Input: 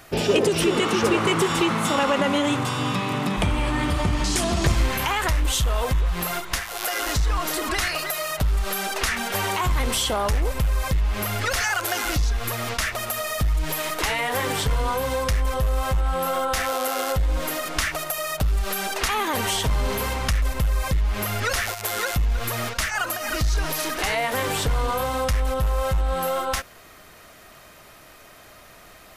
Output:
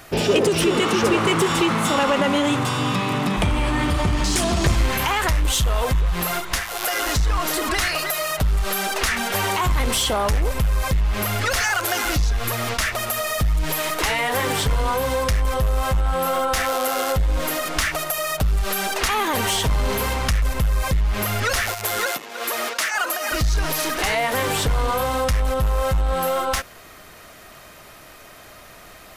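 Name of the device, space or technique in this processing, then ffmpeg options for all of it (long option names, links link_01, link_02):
parallel distortion: -filter_complex "[0:a]asettb=1/sr,asplit=3[link_01][link_02][link_03];[link_01]atrim=end=22.064[link_04];[link_02]atrim=start=22.06:end=23.32,asetpts=PTS-STARTPTS,afade=type=in:duration=0.004:curve=qsin,afade=type=out:start_time=1.256:duration=0.004:curve=qsin,highpass=frequency=290:width=0.5412,highpass=frequency=290:width=1.3066[link_05];[link_03]atrim=start=23.316[link_06];[link_04][link_05]acrossfade=duration=0.004:curve1=hsin:curve2=qsin[link_07];[link_07][link_06]acrossfade=duration=0.004:curve1=qsin:curve2=hsin,asplit=2[link_08][link_09];[link_09]asoftclip=type=hard:threshold=-24.5dB,volume=-5.5dB[link_10];[link_08][link_10]amix=inputs=2:normalize=0"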